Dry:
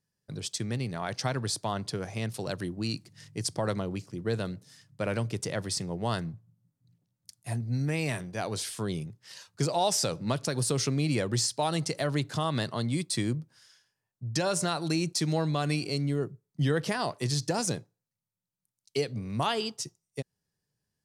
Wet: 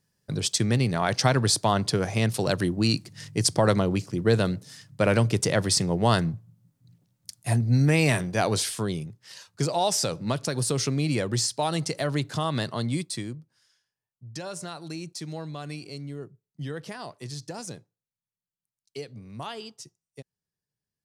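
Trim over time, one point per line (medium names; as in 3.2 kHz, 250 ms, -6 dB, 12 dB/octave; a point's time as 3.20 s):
8.50 s +9 dB
8.99 s +2 dB
12.95 s +2 dB
13.38 s -8 dB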